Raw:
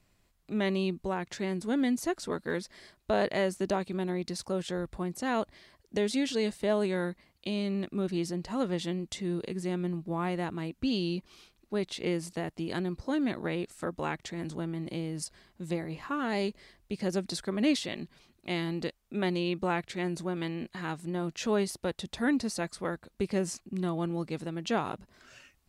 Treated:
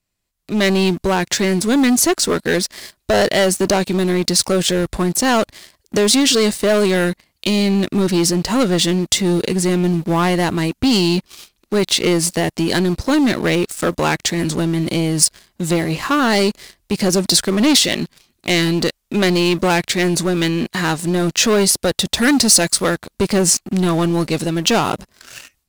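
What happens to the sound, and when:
22.22–22.90 s: treble shelf 3.7 kHz +6 dB
whole clip: waveshaping leveller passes 3; level rider gain up to 12.5 dB; treble shelf 3.1 kHz +9.5 dB; trim -5.5 dB

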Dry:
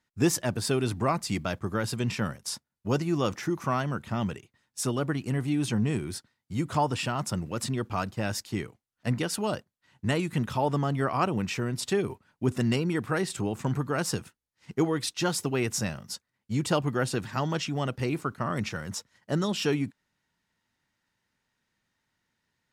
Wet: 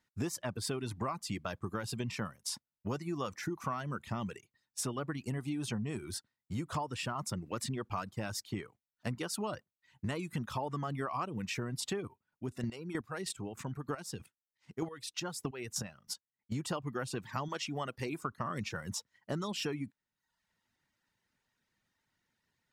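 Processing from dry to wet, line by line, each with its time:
12.01–16.52 s: square tremolo 3.2 Hz, depth 65%, duty 20%
17.48–18.23 s: bass shelf 210 Hz -8.5 dB
whole clip: reverb removal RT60 0.65 s; dynamic bell 1.1 kHz, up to +6 dB, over -46 dBFS, Q 3.4; compression, threshold -32 dBFS; trim -1.5 dB

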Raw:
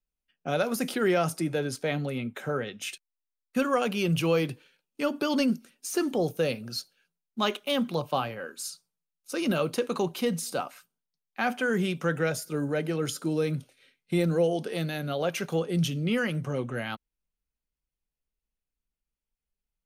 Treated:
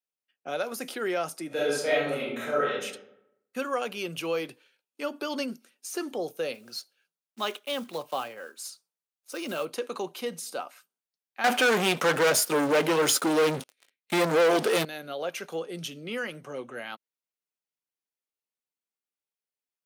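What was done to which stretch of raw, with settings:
1.47–2.82 s: reverb throw, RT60 0.82 s, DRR -8 dB
6.54–9.67 s: block-companded coder 5-bit
11.44–14.85 s: waveshaping leveller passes 5
whole clip: high-pass 350 Hz 12 dB/octave; trim -3 dB

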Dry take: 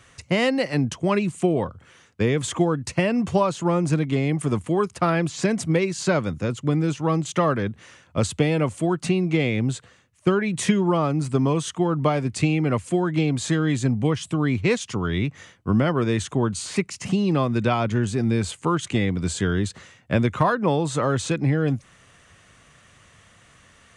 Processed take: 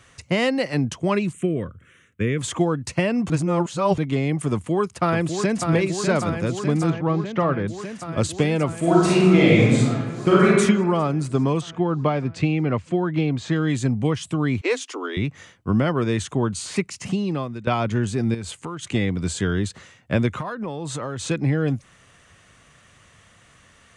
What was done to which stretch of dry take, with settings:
1.33–2.39 s: static phaser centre 2 kHz, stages 4
3.30–3.98 s: reverse
4.52–5.72 s: echo throw 600 ms, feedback 80%, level -6 dB
6.90–7.68 s: distance through air 260 m
8.78–10.47 s: reverb throw, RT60 1.3 s, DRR -6.5 dB
11.61–13.56 s: distance through air 140 m
14.61–15.17 s: Chebyshev high-pass 260 Hz, order 8
16.75–17.67 s: fade out equal-power, to -16 dB
18.34–18.90 s: compression 5:1, threshold -28 dBFS
20.40–21.22 s: compression 8:1, threshold -25 dBFS

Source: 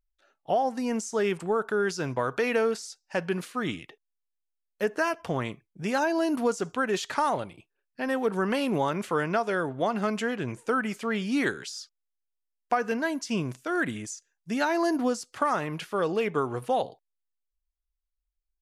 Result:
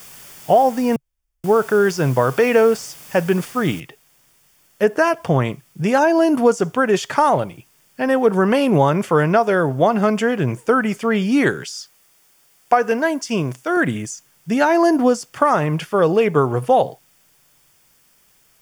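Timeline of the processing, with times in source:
0.96–1.44 s: room tone
3.80 s: noise floor step -48 dB -64 dB
11.70–13.77 s: tone controls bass -7 dB, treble +1 dB
whole clip: peaking EQ 140 Hz +9.5 dB 0.73 oct; band-stop 4 kHz, Q 6.3; dynamic bell 580 Hz, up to +5 dB, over -38 dBFS, Q 0.75; trim +7 dB

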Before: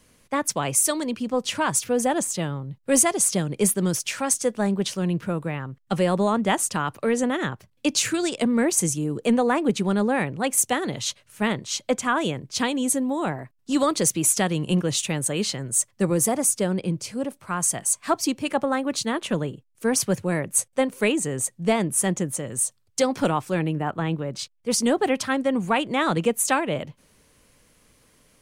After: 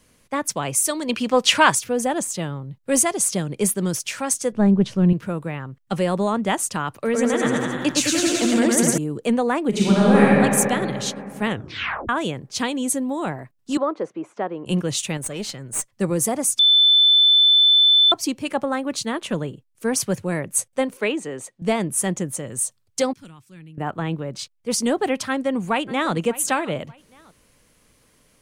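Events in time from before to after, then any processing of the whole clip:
1.09–1.75 s: FFT filter 100 Hz 0 dB, 2.5 kHz +13 dB, 11 kHz +7 dB
4.52–5.13 s: RIAA curve playback
6.92–8.98 s: bouncing-ball echo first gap 110 ms, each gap 0.9×, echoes 6, each echo -2 dB
9.69–10.32 s: reverb throw, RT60 2.8 s, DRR -7.5 dB
11.47 s: tape stop 0.62 s
13.77–14.66 s: Butterworth band-pass 650 Hz, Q 0.65
15.17–15.92 s: valve stage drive 13 dB, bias 0.7
16.59–18.12 s: bleep 3.52 kHz -11 dBFS
20.97–21.62 s: three-band isolator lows -13 dB, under 240 Hz, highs -14 dB, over 4.9 kHz
23.13–23.78 s: amplifier tone stack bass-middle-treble 6-0-2
25.28–26.13 s: echo throw 590 ms, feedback 25%, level -16.5 dB

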